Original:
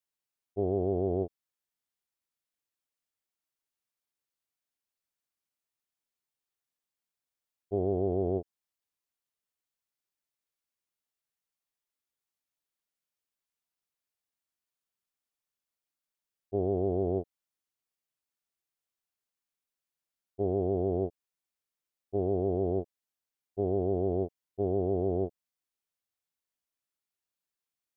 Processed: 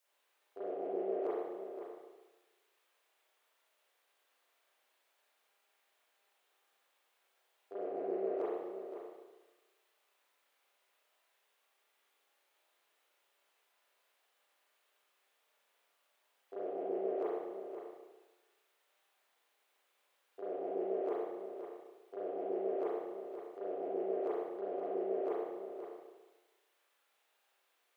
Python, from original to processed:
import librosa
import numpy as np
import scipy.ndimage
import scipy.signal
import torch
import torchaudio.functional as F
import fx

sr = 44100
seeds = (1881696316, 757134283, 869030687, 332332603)

y = fx.lowpass(x, sr, hz=1100.0, slope=6, at=(7.8, 8.31))
y = fx.over_compress(y, sr, threshold_db=-41.0, ratio=-1.0)
y = np.clip(y, -10.0 ** (-32.5 / 20.0), 10.0 ** (-32.5 / 20.0))
y = fx.ladder_highpass(y, sr, hz=380.0, resonance_pct=25)
y = y + 10.0 ** (-9.0 / 20.0) * np.pad(y, (int(522 * sr / 1000.0), 0))[:len(y)]
y = fx.rev_spring(y, sr, rt60_s=1.2, pass_ms=(31, 36), chirp_ms=35, drr_db=-10.0)
y = F.gain(torch.from_numpy(y), 3.0).numpy()